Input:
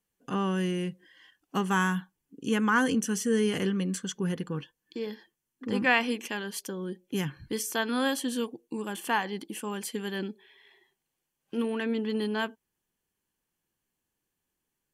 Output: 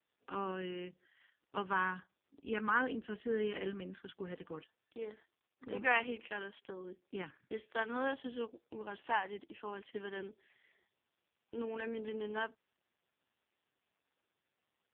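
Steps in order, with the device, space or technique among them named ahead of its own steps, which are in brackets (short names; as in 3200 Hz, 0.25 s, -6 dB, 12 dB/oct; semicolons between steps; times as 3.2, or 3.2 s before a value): telephone (BPF 360–3300 Hz; gain -5.5 dB; AMR-NB 4.75 kbps 8000 Hz)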